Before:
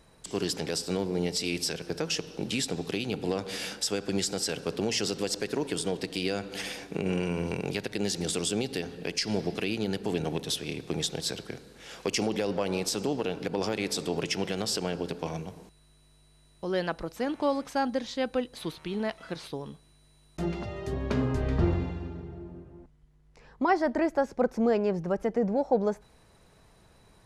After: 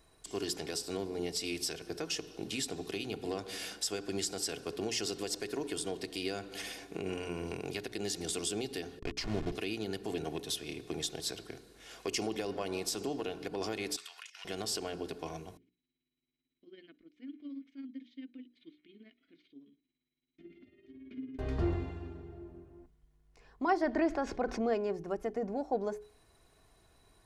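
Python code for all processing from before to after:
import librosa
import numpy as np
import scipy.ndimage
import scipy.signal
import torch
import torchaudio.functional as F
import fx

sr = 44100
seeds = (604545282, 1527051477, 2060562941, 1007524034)

y = fx.chain(x, sr, fx.delta_hold(step_db=-30.5),
    fx.lowpass(hz=4800.0, slope=12),
    fx.low_shelf(hz=160.0, db=9.5), at=(8.99, 9.52))
y = fx.chain(y, sr, fx.highpass(hz=1400.0, slope=24),
    fx.high_shelf(hz=3700.0, db=-6.0),
    fx.over_compress(threshold_db=-42.0, ratio=-0.5), at=(13.96, 14.45))
y = fx.chain(y, sr, fx.tremolo(hz=18.0, depth=0.63),
    fx.vowel_filter(vowel='i'),
    fx.air_absorb(metres=95.0), at=(15.57, 21.39))
y = fx.chain(y, sr, fx.lowpass(hz=5000.0, slope=12),
    fx.peak_eq(hz=2500.0, db=2.5, octaves=2.0),
    fx.env_flatten(amount_pct=50), at=(23.81, 24.74))
y = fx.high_shelf(y, sr, hz=11000.0, db=7.5)
y = fx.hum_notches(y, sr, base_hz=60, count=7)
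y = y + 0.44 * np.pad(y, (int(2.8 * sr / 1000.0), 0))[:len(y)]
y = y * librosa.db_to_amplitude(-7.0)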